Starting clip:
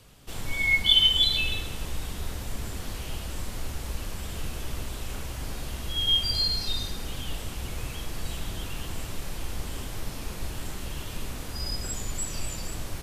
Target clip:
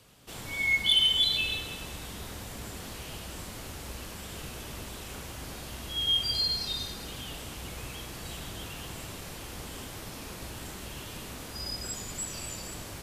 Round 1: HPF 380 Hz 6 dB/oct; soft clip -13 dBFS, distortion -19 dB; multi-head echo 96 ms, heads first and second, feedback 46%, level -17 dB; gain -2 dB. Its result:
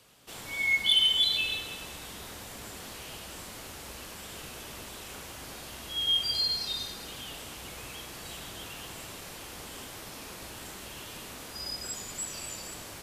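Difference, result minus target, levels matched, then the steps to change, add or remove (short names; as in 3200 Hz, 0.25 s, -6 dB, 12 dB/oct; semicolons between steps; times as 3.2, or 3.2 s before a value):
125 Hz band -7.5 dB
change: HPF 130 Hz 6 dB/oct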